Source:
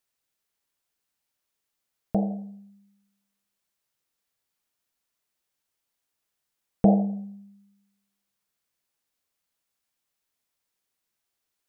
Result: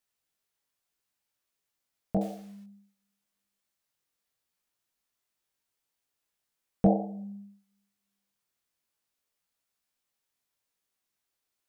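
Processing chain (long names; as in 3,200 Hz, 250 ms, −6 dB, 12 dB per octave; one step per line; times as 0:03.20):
0:02.21–0:02.64: log-companded quantiser 6 bits
chorus effect 0.64 Hz, delay 17 ms, depth 5.2 ms
level +1 dB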